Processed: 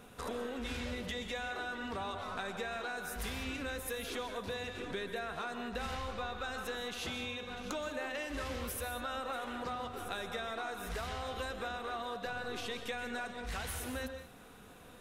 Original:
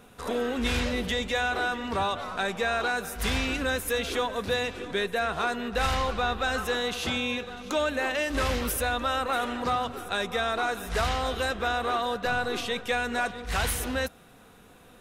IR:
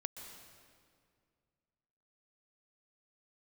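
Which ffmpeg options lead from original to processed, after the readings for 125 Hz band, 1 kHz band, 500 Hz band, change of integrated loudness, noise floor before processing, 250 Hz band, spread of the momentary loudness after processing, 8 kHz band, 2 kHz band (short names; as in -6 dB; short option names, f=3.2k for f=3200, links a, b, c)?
-11.0 dB, -11.5 dB, -11.0 dB, -11.0 dB, -53 dBFS, -10.0 dB, 2 LU, -10.0 dB, -11.5 dB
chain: -filter_complex "[0:a]acompressor=threshold=-36dB:ratio=5[a];[1:a]atrim=start_sample=2205,afade=t=out:st=0.26:d=0.01,atrim=end_sample=11907[b];[a][b]afir=irnorm=-1:irlink=0,volume=1dB"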